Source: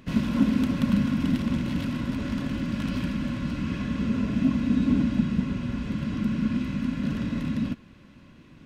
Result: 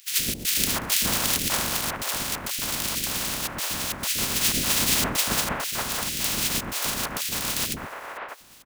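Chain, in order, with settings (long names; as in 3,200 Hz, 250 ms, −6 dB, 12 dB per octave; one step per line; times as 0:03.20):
compressing power law on the bin magnitudes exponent 0.16
gate pattern "xxx.xxx.xxxxxx" 134 BPM −24 dB
three-band delay without the direct sound highs, lows, mids 120/600 ms, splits 460/1,900 Hz
level +1 dB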